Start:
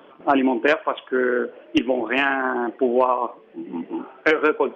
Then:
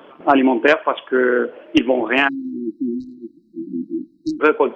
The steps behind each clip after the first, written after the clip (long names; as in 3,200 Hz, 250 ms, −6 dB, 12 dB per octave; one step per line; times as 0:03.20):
time-frequency box erased 0:02.28–0:04.41, 360–3,800 Hz
level +4.5 dB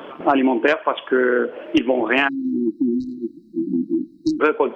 downward compressor 2.5 to 1, threshold −26 dBFS, peak gain reduction 12 dB
level +7.5 dB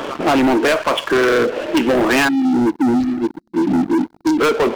leveller curve on the samples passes 5
level −7 dB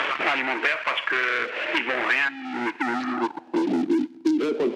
coupled-rooms reverb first 0.49 s, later 3.4 s, from −19 dB, DRR 19 dB
band-pass filter sweep 2,200 Hz → 300 Hz, 0:02.77–0:03.99
multiband upward and downward compressor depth 100%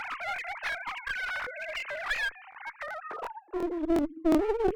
three sine waves on the formant tracks
asymmetric clip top −30 dBFS
regular buffer underruns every 0.36 s, samples 1,024, repeat, from 0:00.34
level −3.5 dB